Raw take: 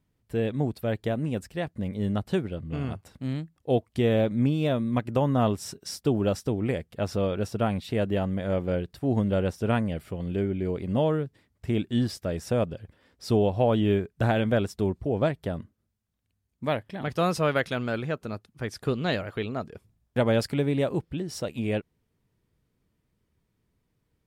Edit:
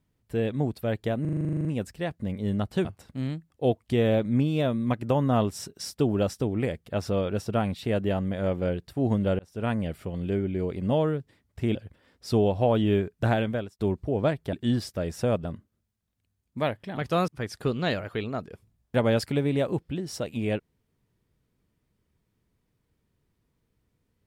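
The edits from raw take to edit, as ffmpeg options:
-filter_complex "[0:a]asplit=19[s0][s1][s2][s3][s4][s5][s6][s7][s8][s9][s10][s11][s12][s13][s14][s15][s16][s17][s18];[s0]atrim=end=1.252[s19];[s1]atrim=start=1.208:end=1.252[s20];[s2]atrim=start=1.208:end=1.252[s21];[s3]atrim=start=1.208:end=1.252[s22];[s4]atrim=start=1.208:end=1.252[s23];[s5]atrim=start=1.208:end=1.252[s24];[s6]atrim=start=1.208:end=1.252[s25];[s7]atrim=start=1.208:end=1.252[s26];[s8]atrim=start=1.208:end=1.252[s27];[s9]atrim=start=1.208:end=1.252[s28];[s10]atrim=start=1.208:end=1.252[s29];[s11]atrim=start=1.208:end=2.412[s30];[s12]atrim=start=2.908:end=9.45,asetpts=PTS-STARTPTS,afade=t=out:st=6.538:d=0.004:c=hsin[s31];[s13]atrim=start=9.45:end=11.812,asetpts=PTS-STARTPTS,afade=t=in:d=0.41[s32];[s14]atrim=start=12.728:end=14.77,asetpts=PTS-STARTPTS,afade=t=out:st=1.592:d=0.45[s33];[s15]atrim=start=14.77:end=15.512,asetpts=PTS-STARTPTS,afade=t=in:d=0.004:c=hsin[s34];[s16]atrim=start=11.808:end=12.732[s35];[s17]atrim=start=15.508:end=17.342[s36];[s18]atrim=start=18.498[s37];[s19][s20]acrossfade=d=0.004:c1=hsin:c2=hsin[s38];[s38][s21]acrossfade=d=0.004:c1=hsin:c2=hsin[s39];[s39][s22]acrossfade=d=0.004:c1=hsin:c2=hsin[s40];[s40][s23]acrossfade=d=0.004:c1=hsin:c2=hsin[s41];[s41][s24]acrossfade=d=0.004:c1=hsin:c2=hsin[s42];[s42][s25]acrossfade=d=0.004:c1=hsin:c2=hsin[s43];[s43][s26]acrossfade=d=0.004:c1=hsin:c2=hsin[s44];[s44][s27]acrossfade=d=0.004:c1=hsin:c2=hsin[s45];[s45][s28]acrossfade=d=0.004:c1=hsin:c2=hsin[s46];[s46][s29]acrossfade=d=0.004:c1=hsin:c2=hsin[s47];[s47][s30]acrossfade=d=0.004:c1=hsin:c2=hsin[s48];[s31][s32]concat=n=2:v=0:a=1[s49];[s48][s49]acrossfade=d=0.004:c1=hsin:c2=hsin[s50];[s33][s34]concat=n=2:v=0:a=1[s51];[s50][s51]acrossfade=d=0.004:c1=hsin:c2=hsin[s52];[s52][s35]acrossfade=d=0.004:c1=hsin:c2=hsin[s53];[s53][s36]acrossfade=d=0.004:c1=hsin:c2=hsin[s54];[s54][s37]acrossfade=d=0.004:c1=hsin:c2=hsin"

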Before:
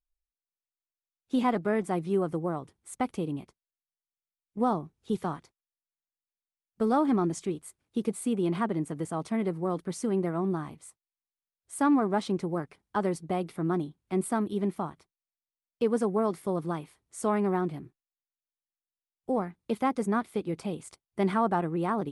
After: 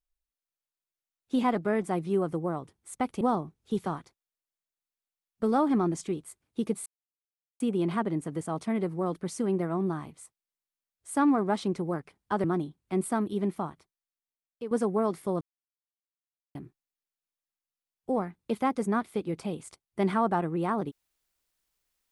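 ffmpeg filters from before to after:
-filter_complex "[0:a]asplit=7[s0][s1][s2][s3][s4][s5][s6];[s0]atrim=end=3.212[s7];[s1]atrim=start=4.588:end=8.24,asetpts=PTS-STARTPTS,afade=t=out:st=3.648:d=0.004:c=hsin,apad=pad_dur=0.74[s8];[s2]atrim=start=8.24:end=13.082,asetpts=PTS-STARTPTS,afade=t=in:d=0.004:c=hsin[s9];[s3]atrim=start=13.638:end=15.91,asetpts=PTS-STARTPTS,afade=t=out:st=1.202:d=1.07:silence=0.251189[s10];[s4]atrim=start=15.91:end=16.61,asetpts=PTS-STARTPTS,afade=t=in:d=0.004:c=hsin:silence=0.251189,afade=t=out:st=0.696:d=0.004:c=hsin[s11];[s5]atrim=start=16.61:end=17.75,asetpts=PTS-STARTPTS,volume=0[s12];[s6]atrim=start=17.75,asetpts=PTS-STARTPTS,afade=t=in:d=0.004:c=hsin[s13];[s8][s9]concat=n=2:v=0:a=1[s14];[s7][s14]acrossfade=d=0.004:c1=hsin:c2=hsin[s15];[s10][s11][s12][s13]concat=n=4:v=0:a=1[s16];[s15][s16]acrossfade=d=0.004:c1=hsin:c2=hsin"

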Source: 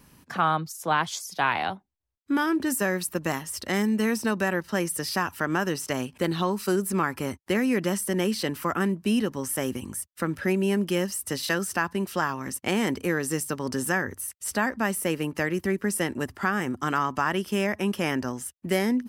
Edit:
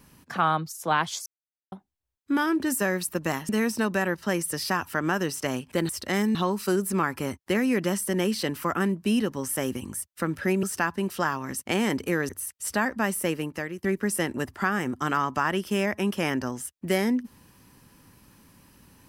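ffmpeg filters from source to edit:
-filter_complex "[0:a]asplit=9[s0][s1][s2][s3][s4][s5][s6][s7][s8];[s0]atrim=end=1.26,asetpts=PTS-STARTPTS,afade=t=out:st=1.256:d=0.004:c=hsin[s9];[s1]atrim=start=1.26:end=1.72,asetpts=PTS-STARTPTS,volume=0[s10];[s2]atrim=start=1.72:end=3.492,asetpts=PTS-STARTPTS,afade=t=in:d=0.004:c=hsin[s11];[s3]atrim=start=3.948:end=6.352[s12];[s4]atrim=start=3.488:end=3.952[s13];[s5]atrim=start=6.348:end=10.632[s14];[s6]atrim=start=11.598:end=13.262[s15];[s7]atrim=start=14.098:end=15.65,asetpts=PTS-STARTPTS,afade=t=out:st=0.982:d=0.57:silence=0.237137[s16];[s8]atrim=start=15.65,asetpts=PTS-STARTPTS,afade=t=in:d=0.004:c=hsin:silence=0.237137[s17];[s9][s10][s11]concat=n=3:v=0:a=1[s18];[s18][s12]acrossfade=d=0.004:c1=hsin:c2=hsin[s19];[s19][s13]acrossfade=d=0.004:c1=hsin:c2=hsin[s20];[s20][s14]acrossfade=d=0.004:c1=hsin:c2=hsin[s21];[s21][s15]acrossfade=d=0.004:c1=hsin:c2=hsin[s22];[s16][s17]concat=n=2:v=0:a=1[s23];[s22][s23]acrossfade=d=0.004:c1=hsin:c2=hsin"

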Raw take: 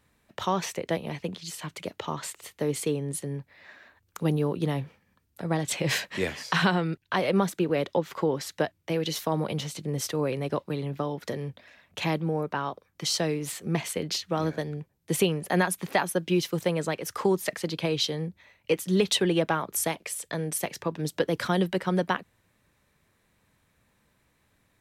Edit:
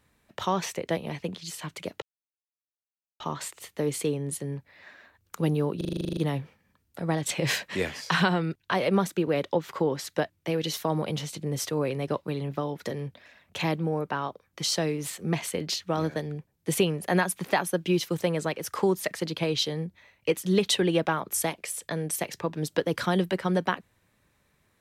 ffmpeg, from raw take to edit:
-filter_complex "[0:a]asplit=12[s0][s1][s2][s3][s4][s5][s6][s7][s8][s9][s10][s11];[s0]atrim=end=2.02,asetpts=PTS-STARTPTS,afade=t=out:st=2.016:d=0.004:c=hsin,apad=pad_dur=1.18[s12];[s1]atrim=start=2.02:end=4.632,asetpts=PTS-STARTPTS,afade=t=in:d=0.004:c=hsin[s13];[s2]atrim=start=4.588:end=4.632[s14];[s3]atrim=start=4.588:end=4.632[s15];[s4]atrim=start=4.588:end=4.632[s16];[s5]atrim=start=4.588:end=4.632[s17];[s6]atrim=start=4.588:end=4.632[s18];[s7]atrim=start=4.588:end=4.632[s19];[s8]atrim=start=4.588:end=4.632[s20];[s9]atrim=start=4.588:end=4.632[s21];[s10]atrim=start=4.588:end=4.632[s22];[s11]atrim=start=4.588[s23];[s12][s13]concat=n=2:v=0:a=1[s24];[s24][s14]acrossfade=d=0.004:c1=hsin:c2=hsin[s25];[s25][s15]acrossfade=d=0.004:c1=hsin:c2=hsin[s26];[s26][s16]acrossfade=d=0.004:c1=hsin:c2=hsin[s27];[s27][s17]acrossfade=d=0.004:c1=hsin:c2=hsin[s28];[s28][s18]acrossfade=d=0.004:c1=hsin:c2=hsin[s29];[s29][s19]acrossfade=d=0.004:c1=hsin:c2=hsin[s30];[s30][s20]acrossfade=d=0.004:c1=hsin:c2=hsin[s31];[s31][s21]acrossfade=d=0.004:c1=hsin:c2=hsin[s32];[s32][s22]acrossfade=d=0.004:c1=hsin:c2=hsin[s33];[s33][s23]acrossfade=d=0.004:c1=hsin:c2=hsin"

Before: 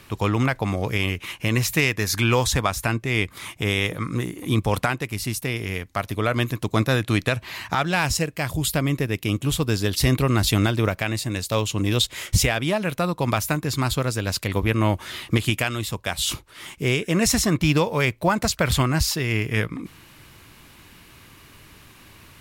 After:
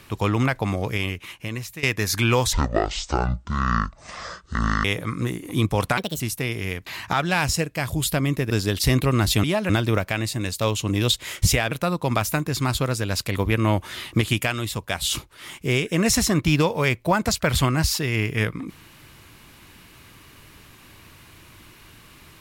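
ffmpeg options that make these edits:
-filter_complex "[0:a]asplit=11[s0][s1][s2][s3][s4][s5][s6][s7][s8][s9][s10];[s0]atrim=end=1.83,asetpts=PTS-STARTPTS,afade=t=out:st=0.72:d=1.11:silence=0.125893[s11];[s1]atrim=start=1.83:end=2.534,asetpts=PTS-STARTPTS,afade=t=in:d=0.004:c=hsin:silence=0.125893[s12];[s2]atrim=start=2.53:end=3.78,asetpts=PTS-STARTPTS,asetrate=23814,aresample=44100,atrim=end_sample=102083,asetpts=PTS-STARTPTS[s13];[s3]atrim=start=3.776:end=4.914[s14];[s4]atrim=start=4.91:end=5.25,asetpts=PTS-STARTPTS,asetrate=65268,aresample=44100,atrim=end_sample=10131,asetpts=PTS-STARTPTS[s15];[s5]atrim=start=5.246:end=5.912[s16];[s6]atrim=start=7.478:end=9.122[s17];[s7]atrim=start=9.668:end=10.602[s18];[s8]atrim=start=12.618:end=12.882[s19];[s9]atrim=start=10.598:end=12.622[s20];[s10]atrim=start=12.878[s21];[s11][s12]concat=n=2:v=0:a=1[s22];[s22][s13]acrossfade=d=0.004:c1=hsin:c2=hsin[s23];[s23][s14]acrossfade=d=0.004:c1=hsin:c2=hsin[s24];[s24][s15]acrossfade=d=0.004:c1=hsin:c2=hsin[s25];[s25][s16]acrossfade=d=0.004:c1=hsin:c2=hsin[s26];[s26][s17]acrossfade=d=0.004:c1=hsin:c2=hsin[s27];[s27][s18]acrossfade=d=0.004:c1=hsin:c2=hsin[s28];[s28][s19]acrossfade=d=0.004:c1=hsin:c2=hsin[s29];[s29][s20]acrossfade=d=0.004:c1=hsin:c2=hsin[s30];[s30][s21]acrossfade=d=0.004:c1=hsin:c2=hsin"

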